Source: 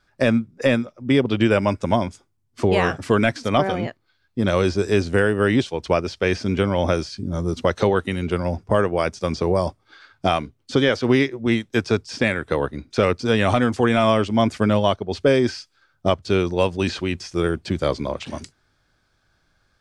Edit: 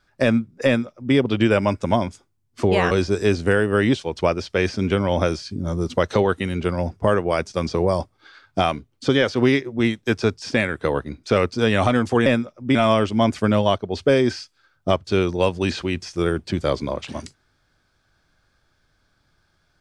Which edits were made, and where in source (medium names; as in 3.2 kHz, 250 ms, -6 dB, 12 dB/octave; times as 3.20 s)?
0.66–1.15 s: copy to 13.93 s
2.91–4.58 s: delete